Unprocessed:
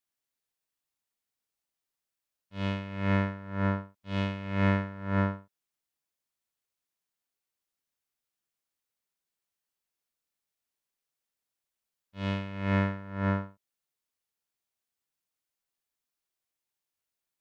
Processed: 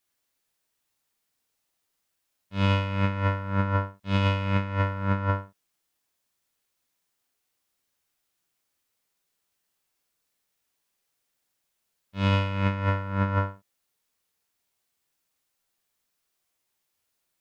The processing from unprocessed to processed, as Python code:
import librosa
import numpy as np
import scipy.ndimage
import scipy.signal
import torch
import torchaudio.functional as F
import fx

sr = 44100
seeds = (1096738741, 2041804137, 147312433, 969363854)

p1 = x + fx.room_early_taps(x, sr, ms=(11, 49), db=(-10.0, -4.0), dry=0)
p2 = fx.over_compress(p1, sr, threshold_db=-28.0, ratio=-0.5)
y = F.gain(torch.from_numpy(p2), 5.5).numpy()